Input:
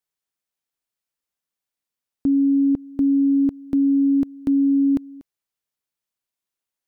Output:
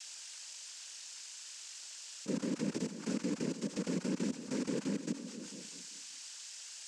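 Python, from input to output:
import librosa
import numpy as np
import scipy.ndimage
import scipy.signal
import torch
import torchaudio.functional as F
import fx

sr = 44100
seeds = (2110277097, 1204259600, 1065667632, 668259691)

p1 = scipy.ndimage.median_filter(x, 41, mode='constant')
p2 = fx.vibrato(p1, sr, rate_hz=6.2, depth_cents=54.0)
p3 = fx.echo_feedback(p2, sr, ms=194, feedback_pct=33, wet_db=-7.0)
p4 = fx.env_lowpass(p3, sr, base_hz=370.0, full_db=-15.5)
p5 = fx.doubler(p4, sr, ms=32.0, db=-2.0)
p6 = fx.quant_dither(p5, sr, seeds[0], bits=6, dither='triangular')
p7 = p5 + (p6 * 10.0 ** (-12.0 / 20.0))
p8 = np.diff(p7, prepend=0.0)
p9 = p8 + 10.0 ** (-8.0 / 20.0) * np.pad(p8, (int(472 * sr / 1000.0), 0))[:len(p8)]
p10 = fx.level_steps(p9, sr, step_db=20)
p11 = scipy.signal.sosfilt(scipy.signal.butter(2, 190.0, 'highpass', fs=sr, output='sos'), p10)
p12 = fx.noise_vocoder(p11, sr, seeds[1], bands=8)
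p13 = fx.env_flatten(p12, sr, amount_pct=50)
y = p13 * 10.0 ** (6.5 / 20.0)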